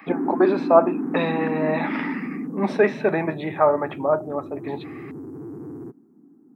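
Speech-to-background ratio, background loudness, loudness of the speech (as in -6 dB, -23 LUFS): 8.5 dB, -31.0 LUFS, -22.5 LUFS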